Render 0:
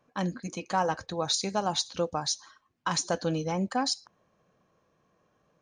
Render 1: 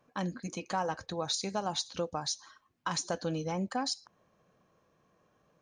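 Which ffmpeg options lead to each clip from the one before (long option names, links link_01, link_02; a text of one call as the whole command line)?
ffmpeg -i in.wav -af "acompressor=threshold=-38dB:ratio=1.5" out.wav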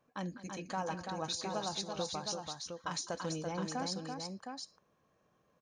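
ffmpeg -i in.wav -af "aecho=1:1:205|335|713:0.141|0.562|0.501,volume=-5.5dB" out.wav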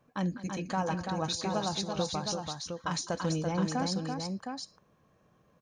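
ffmpeg -i in.wav -af "bass=frequency=250:gain=6,treble=frequency=4000:gain=-2,volume=5dB" out.wav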